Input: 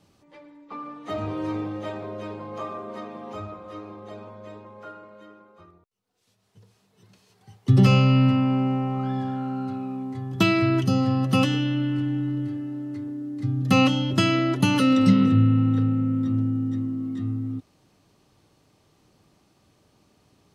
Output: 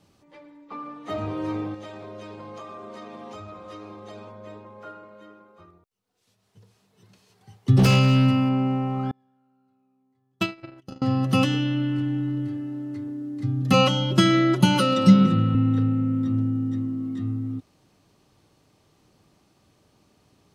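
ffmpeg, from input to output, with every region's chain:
-filter_complex "[0:a]asettb=1/sr,asplit=3[a][b][c];[a]atrim=end=1.744[d];[b]atrim=start=1.74:end=4.32,asetpts=PTS-STARTPTS,afade=t=in:d=0.004:c=qsin,afade=t=out:st=2.576:d=0.004:c=qsin,lowpass=6.5k,aemphasis=mode=production:type=75fm,acompressor=threshold=-35dB:ratio=10:attack=3.2:release=140:knee=1:detection=peak[e];[c]atrim=start=4.316[f];[d][e]acrossfade=d=0.004:c1=hsin:c2=qsin[g];[g][f]acrossfade=d=0.004:c1=qsin:c2=hsin,asettb=1/sr,asplit=3[h][i][j];[h]atrim=end=7.794[k];[i]atrim=start=7.79:end=8.49,asetpts=PTS-STARTPTS,afade=t=in:d=0.004:c=qsin,afade=t=out:st=0.696:d=0.004:c=qsin,aemphasis=mode=production:type=50kf,aeval=exprs='0.282*(abs(mod(val(0)/0.282+3,4)-2)-1)':c=same[l];[j]atrim=start=8.486[m];[k][l]acrossfade=d=0.004:c1=hsin:c2=qsin[n];[n][m]acrossfade=d=0.004:c1=qsin:c2=hsin,asettb=1/sr,asplit=3[o][p][q];[o]atrim=end=9.114[r];[p]atrim=start=9.11:end=11.02,asetpts=PTS-STARTPTS,afade=t=in:d=0.004:c=qsin,afade=t=out:st=1.906:d=0.004:c=qsin,agate=range=-35dB:threshold=-18dB:ratio=16:release=100:detection=peak,equalizer=f=68:w=0.67:g=-10[s];[q]atrim=start=11.016[t];[r][s]acrossfade=d=0.004:c1=hsin:c2=qsin[u];[u][t]acrossfade=d=0.004:c1=qsin:c2=hsin,asettb=1/sr,asplit=3[v][w][x];[v]atrim=end=13.734[y];[w]atrim=start=13.73:end=15.55,asetpts=PTS-STARTPTS,afade=t=in:d=0.004:c=qsin,afade=t=out:st=1.816:d=0.004:c=qsin,bandreject=f=1.8k:w=12,aecho=1:1:5.5:0.97,atrim=end_sample=80262[z];[x]atrim=start=15.546[aa];[y][z]acrossfade=d=0.004:c1=hsin:c2=qsin[ab];[ab][aa]acrossfade=d=0.004:c1=qsin:c2=hsin"

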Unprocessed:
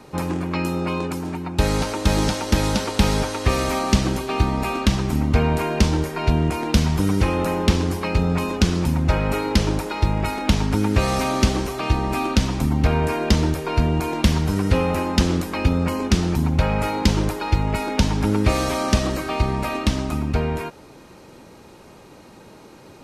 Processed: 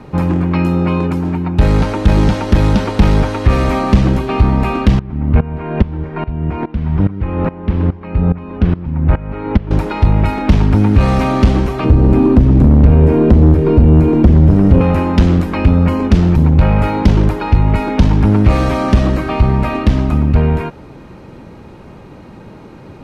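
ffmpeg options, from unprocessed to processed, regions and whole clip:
-filter_complex "[0:a]asettb=1/sr,asplit=3[a][b][c];[a]atrim=end=4.994[d];[b]atrim=start=4.99:end=9.71,asetpts=PTS-STARTPTS,afade=t=in:d=0.004:c=qsin,afade=t=out:st=4.716:d=0.004:c=qsin,lowpass=2.4k,aeval=exprs='val(0)*pow(10,-20*if(lt(mod(-2.4*n/s,1),2*abs(-2.4)/1000),1-mod(-2.4*n/s,1)/(2*abs(-2.4)/1000),(mod(-2.4*n/s,1)-2*abs(-2.4)/1000)/(1-2*abs(-2.4)/1000))/20)':c=same[e];[c]atrim=start=9.706[f];[d][e]acrossfade=d=0.004:c1=hsin:c2=qsin[g];[g][f]acrossfade=d=0.004:c1=qsin:c2=hsin,asettb=1/sr,asplit=3[h][i][j];[h]atrim=end=11.844[k];[i]atrim=start=11.84:end=14.81,asetpts=PTS-STARTPTS,afade=t=in:d=0.004:c=qsin,afade=t=out:st=2.966:d=0.004:c=qsin,lowshelf=f=560:t=q:w=1.5:g=9,acrossover=split=690|2100|5800[l][m][n][o];[l]acompressor=threshold=-12dB:ratio=3[p];[m]acompressor=threshold=-36dB:ratio=3[q];[n]acompressor=threshold=-47dB:ratio=3[r];[o]acompressor=threshold=-48dB:ratio=3[s];[p][q][r][s]amix=inputs=4:normalize=0,bandreject=f=50:t=h:w=6,bandreject=f=100:t=h:w=6,bandreject=f=150:t=h:w=6,bandreject=f=200:t=h:w=6,bandreject=f=250:t=h:w=6,bandreject=f=300:t=h:w=6,bandreject=f=350:t=h:w=6,bandreject=f=400:t=h:w=6,bandreject=f=450:t=h:w=6[t];[j]atrim=start=14.806[u];[k][t]acrossfade=d=0.004:c1=hsin:c2=qsin[v];[v][u]acrossfade=d=0.004:c1=qsin:c2=hsin,bass=f=250:g=8,treble=f=4k:g=-14,acontrast=89,volume=-1dB"

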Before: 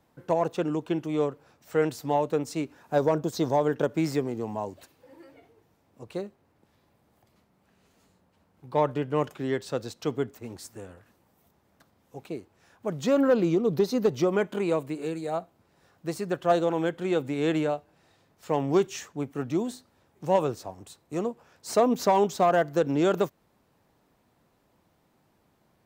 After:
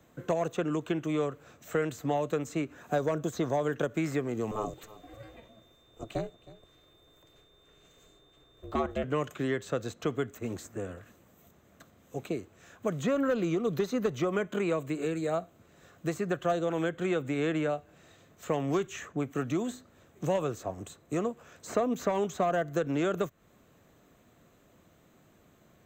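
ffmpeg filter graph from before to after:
-filter_complex "[0:a]asettb=1/sr,asplit=3[a][b][c];[a]atrim=end=4.514[d];[b]atrim=start=4.51:end=9.04,asetpts=PTS-STARTPTS,afade=t=in:d=0.004:c=qsin,afade=t=out:st=4.526:d=0.004:c=qsin,aeval=exprs='val(0)*sin(2*PI*220*n/s)':c=same,aeval=exprs='val(0)+0.000355*sin(2*PI*3600*n/s)':c=same,aecho=1:1:316:0.0841,atrim=end_sample=199773[e];[c]atrim=start=9.036[f];[d][e]acrossfade=d=0.004:c1=hsin:c2=qsin[g];[g][f]acrossfade=d=0.004:c1=qsin:c2=hsin,superequalizer=9b=0.447:14b=0.501:15b=1.58:16b=0.282,acrossover=split=120|910|2200[h][i][j][k];[h]acompressor=threshold=-51dB:ratio=4[l];[i]acompressor=threshold=-36dB:ratio=4[m];[j]acompressor=threshold=-43dB:ratio=4[n];[k]acompressor=threshold=-55dB:ratio=4[o];[l][m][n][o]amix=inputs=4:normalize=0,volume=6dB"

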